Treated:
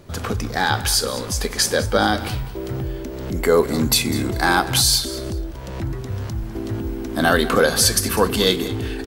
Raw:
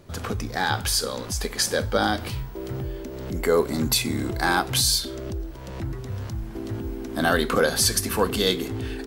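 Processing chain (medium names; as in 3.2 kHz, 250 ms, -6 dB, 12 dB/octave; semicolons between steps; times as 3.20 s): feedback delay 200 ms, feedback 22%, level -16 dB; trim +4.5 dB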